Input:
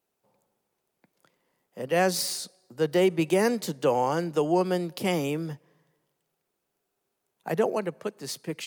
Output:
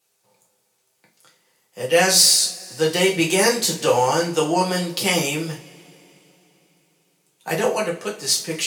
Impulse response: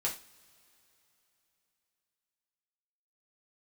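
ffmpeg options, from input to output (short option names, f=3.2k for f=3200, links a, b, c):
-filter_complex "[0:a]equalizer=f=6.8k:w=0.32:g=14.5,asplit=2[a][b];[b]asoftclip=type=tanh:threshold=-12.5dB,volume=-11.5dB[c];[a][c]amix=inputs=2:normalize=0[d];[1:a]atrim=start_sample=2205[e];[d][e]afir=irnorm=-1:irlink=0,volume=-1.5dB"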